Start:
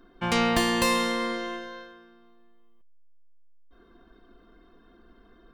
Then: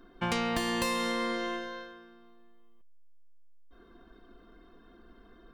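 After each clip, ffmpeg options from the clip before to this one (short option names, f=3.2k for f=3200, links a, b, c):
-af "acompressor=threshold=-27dB:ratio=6"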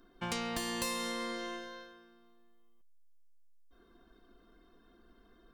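-af "bass=f=250:g=0,treble=f=4k:g=8,volume=-7dB"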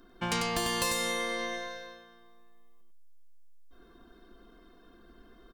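-af "aecho=1:1:96:0.631,volume=5dB"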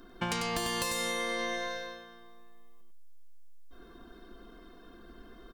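-af "acompressor=threshold=-34dB:ratio=6,volume=4.5dB"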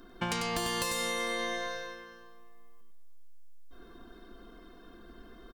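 -af "aecho=1:1:358:0.133"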